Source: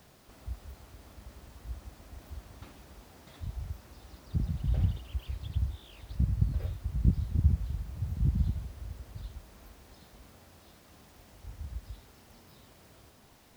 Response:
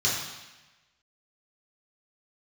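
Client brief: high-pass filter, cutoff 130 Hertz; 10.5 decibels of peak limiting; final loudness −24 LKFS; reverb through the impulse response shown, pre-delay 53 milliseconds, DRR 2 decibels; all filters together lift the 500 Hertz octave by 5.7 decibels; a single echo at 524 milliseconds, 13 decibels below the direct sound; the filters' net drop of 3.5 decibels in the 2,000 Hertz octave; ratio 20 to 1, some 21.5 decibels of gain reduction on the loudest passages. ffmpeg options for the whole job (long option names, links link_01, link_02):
-filter_complex "[0:a]highpass=130,equalizer=frequency=500:width_type=o:gain=7.5,equalizer=frequency=2000:width_type=o:gain=-5,acompressor=threshold=-46dB:ratio=20,alimiter=level_in=22dB:limit=-24dB:level=0:latency=1,volume=-22dB,aecho=1:1:524:0.224,asplit=2[link_01][link_02];[1:a]atrim=start_sample=2205,adelay=53[link_03];[link_02][link_03]afir=irnorm=-1:irlink=0,volume=-14dB[link_04];[link_01][link_04]amix=inputs=2:normalize=0,volume=29dB"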